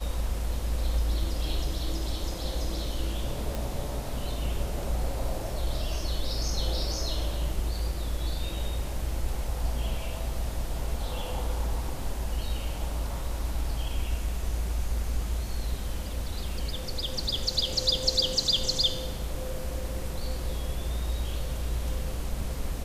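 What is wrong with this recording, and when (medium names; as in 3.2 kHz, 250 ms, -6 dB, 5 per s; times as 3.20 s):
3.55 s: pop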